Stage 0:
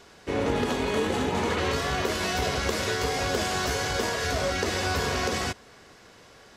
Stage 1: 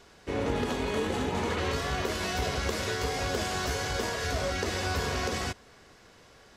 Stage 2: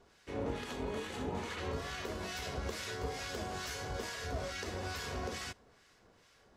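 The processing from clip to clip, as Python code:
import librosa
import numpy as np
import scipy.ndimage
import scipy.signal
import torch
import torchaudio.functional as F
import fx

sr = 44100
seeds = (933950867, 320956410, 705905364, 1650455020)

y1 = fx.low_shelf(x, sr, hz=66.0, db=7.5)
y1 = y1 * 10.0 ** (-4.0 / 20.0)
y2 = fx.harmonic_tremolo(y1, sr, hz=2.3, depth_pct=70, crossover_hz=1200.0)
y2 = y2 * 10.0 ** (-6.0 / 20.0)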